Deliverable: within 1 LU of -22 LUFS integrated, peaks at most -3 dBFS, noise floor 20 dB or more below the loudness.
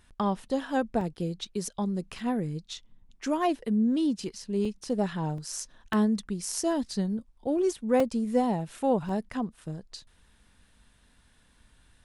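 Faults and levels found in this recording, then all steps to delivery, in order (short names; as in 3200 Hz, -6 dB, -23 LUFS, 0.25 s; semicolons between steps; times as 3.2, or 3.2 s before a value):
dropouts 8; longest dropout 2.7 ms; loudness -29.5 LUFS; peak -13.0 dBFS; loudness target -22.0 LUFS
-> interpolate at 1.01/2.19/4.65/5.38/5.93/6.93/8/9.09, 2.7 ms; gain +7.5 dB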